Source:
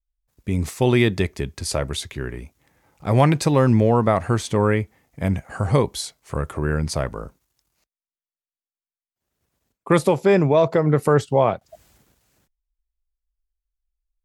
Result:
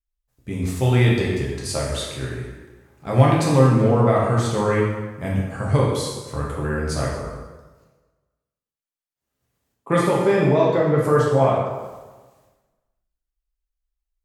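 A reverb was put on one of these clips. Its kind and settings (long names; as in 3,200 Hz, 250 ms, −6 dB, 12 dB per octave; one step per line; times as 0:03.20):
dense smooth reverb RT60 1.3 s, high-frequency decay 0.75×, DRR −4.5 dB
level −5.5 dB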